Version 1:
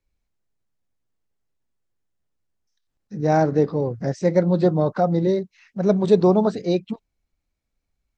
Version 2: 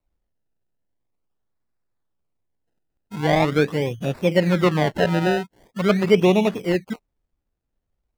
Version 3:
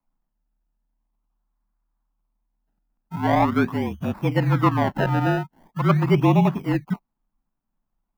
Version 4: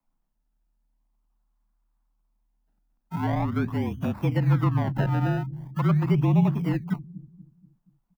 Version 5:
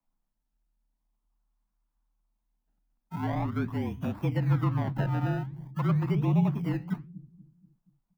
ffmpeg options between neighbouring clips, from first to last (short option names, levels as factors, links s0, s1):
-filter_complex "[0:a]acrusher=samples=27:mix=1:aa=0.000001:lfo=1:lforange=27:lforate=0.43,acrossover=split=4100[s0][s1];[s1]acompressor=threshold=0.00631:ratio=4:attack=1:release=60[s2];[s0][s2]amix=inputs=2:normalize=0"
-af "equalizer=f=125:t=o:w=1:g=-7,equalizer=f=250:t=o:w=1:g=9,equalizer=f=500:t=o:w=1:g=-12,equalizer=f=1000:t=o:w=1:g=10,equalizer=f=2000:t=o:w=1:g=-4,equalizer=f=4000:t=o:w=1:g=-7,equalizer=f=8000:t=o:w=1:g=-9,afreqshift=-38"
-filter_complex "[0:a]acrossover=split=200[s0][s1];[s0]aecho=1:1:239|478|717|956|1195:0.335|0.144|0.0619|0.0266|0.0115[s2];[s1]acompressor=threshold=0.0398:ratio=6[s3];[s2][s3]amix=inputs=2:normalize=0"
-af "flanger=delay=6.1:depth=9:regen=-78:speed=1.4:shape=sinusoidal"